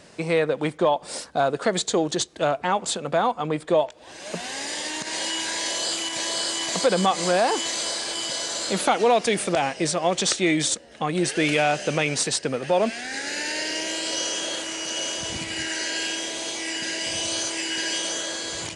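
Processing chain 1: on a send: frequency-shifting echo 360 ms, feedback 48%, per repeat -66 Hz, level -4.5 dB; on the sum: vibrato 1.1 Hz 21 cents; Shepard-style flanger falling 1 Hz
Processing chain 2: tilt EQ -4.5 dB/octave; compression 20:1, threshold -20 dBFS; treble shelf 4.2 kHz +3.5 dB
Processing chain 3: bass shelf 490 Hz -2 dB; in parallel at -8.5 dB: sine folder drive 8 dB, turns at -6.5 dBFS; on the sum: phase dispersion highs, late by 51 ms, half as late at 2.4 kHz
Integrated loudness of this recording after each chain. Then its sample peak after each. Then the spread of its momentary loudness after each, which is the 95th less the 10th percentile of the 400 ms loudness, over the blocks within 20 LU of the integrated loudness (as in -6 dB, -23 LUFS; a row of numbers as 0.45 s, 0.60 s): -27.5 LUFS, -27.5 LUFS, -17.5 LUFS; -12.0 dBFS, -10.0 dBFS, -1.5 dBFS; 5 LU, 5 LU, 6 LU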